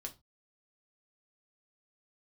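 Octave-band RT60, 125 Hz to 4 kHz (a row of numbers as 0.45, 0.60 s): 0.30, 0.30, 0.25, 0.25, 0.20, 0.20 s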